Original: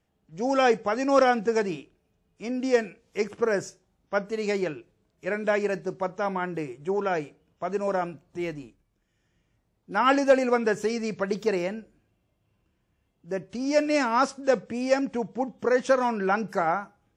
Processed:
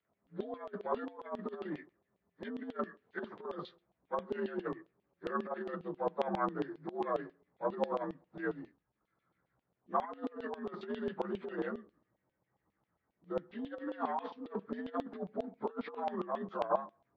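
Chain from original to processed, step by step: inharmonic rescaling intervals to 85%; low shelf 340 Hz +8.5 dB; negative-ratio compressor -26 dBFS, ratio -0.5; tilt shelf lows +9 dB, about 1400 Hz; LFO band-pass saw down 7.4 Hz 770–3300 Hz; gain -1.5 dB

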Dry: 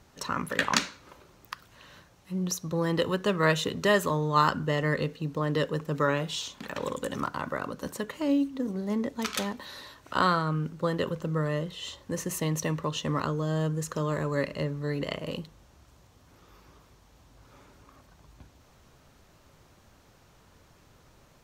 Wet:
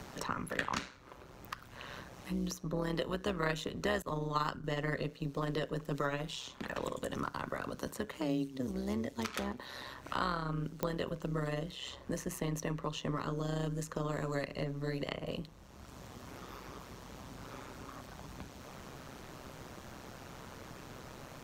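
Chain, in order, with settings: 4.02–4.64 expander -25 dBFS; AM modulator 130 Hz, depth 60%; pops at 10.83, -15 dBFS; three-band squash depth 70%; gain -4 dB

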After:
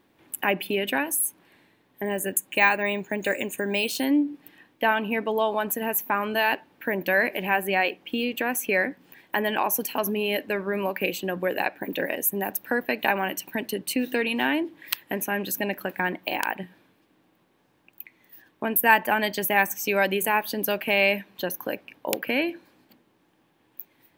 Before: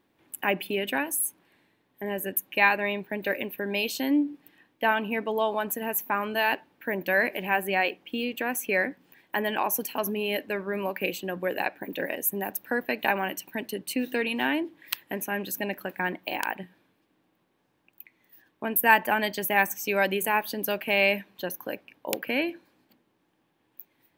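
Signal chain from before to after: in parallel at 0 dB: compressor, threshold -34 dBFS, peak gain reduction 19.5 dB; 2.05–4.05 on the sum: careless resampling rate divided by 2×, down none, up hold

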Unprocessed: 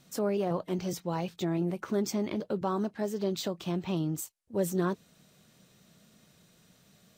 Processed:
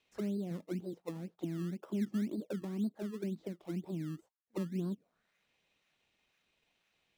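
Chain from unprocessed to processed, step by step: auto-wah 220–2700 Hz, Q 3.1, down, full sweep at -27.5 dBFS; in parallel at -5 dB: decimation with a swept rate 20×, swing 100% 2 Hz; on the sum: gain -4.5 dB

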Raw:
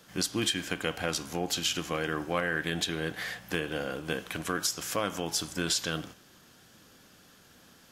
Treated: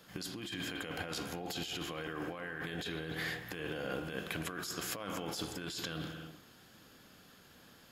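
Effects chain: bell 8500 Hz -7 dB 0.3 oct; notch 5900 Hz, Q 8; reverb, pre-delay 50 ms, DRR 10 dB; negative-ratio compressor -35 dBFS, ratio -1; gain -5 dB

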